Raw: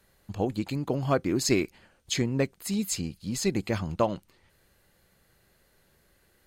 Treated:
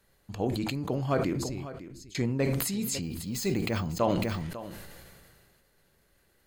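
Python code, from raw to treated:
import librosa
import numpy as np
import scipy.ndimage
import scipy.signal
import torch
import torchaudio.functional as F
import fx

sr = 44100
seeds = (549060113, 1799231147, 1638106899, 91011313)

y = fx.tone_stack(x, sr, knobs='10-0-1', at=(1.33, 2.15))
y = fx.resample_bad(y, sr, factor=2, down='none', up='hold', at=(3.02, 3.87))
y = y + 10.0 ** (-17.0 / 20.0) * np.pad(y, (int(550 * sr / 1000.0), 0))[:len(y)]
y = fx.room_shoebox(y, sr, seeds[0], volume_m3=160.0, walls='furnished', distance_m=0.3)
y = fx.sustainer(y, sr, db_per_s=27.0)
y = F.gain(torch.from_numpy(y), -3.5).numpy()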